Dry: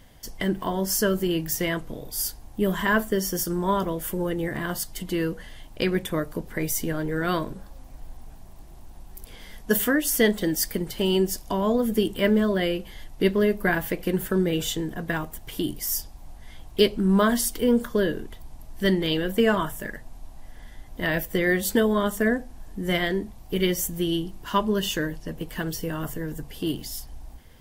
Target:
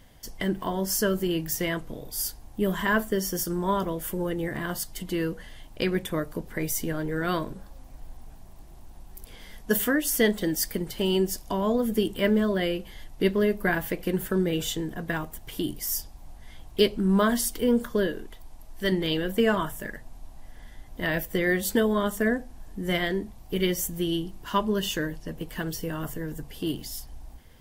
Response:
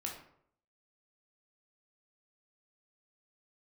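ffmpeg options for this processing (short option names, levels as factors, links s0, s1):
-filter_complex "[0:a]asettb=1/sr,asplit=3[s0][s1][s2];[s0]atrim=end=18.074[s3];[s1]atrim=start=18.07:end=18.92,asetpts=PTS-STARTPTS,afade=t=in:d=0.004:c=qsin,afade=t=out:st=0.846:d=0.004:c=qsin,equalizer=f=110:w=0.57:g=-7.5[s4];[s2]atrim=start=18.916[s5];[s3][s4]acrossfade=d=0.004:c1=hsin:c2=qsin[s6];[s6][s5]acrossfade=d=0.004:c1=qsin:c2=hsin,volume=0.794"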